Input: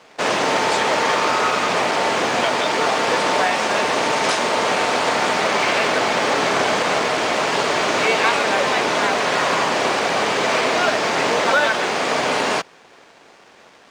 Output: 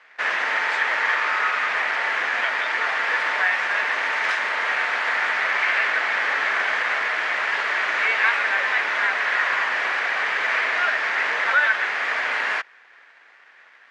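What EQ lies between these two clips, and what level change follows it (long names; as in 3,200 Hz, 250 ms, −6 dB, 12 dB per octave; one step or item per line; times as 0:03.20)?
resonant band-pass 1,800 Hz, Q 3.3
+5.0 dB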